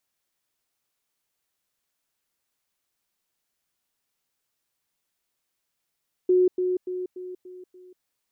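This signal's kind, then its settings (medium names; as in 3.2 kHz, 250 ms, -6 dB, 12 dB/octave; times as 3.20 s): level ladder 365 Hz -15.5 dBFS, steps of -6 dB, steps 6, 0.19 s 0.10 s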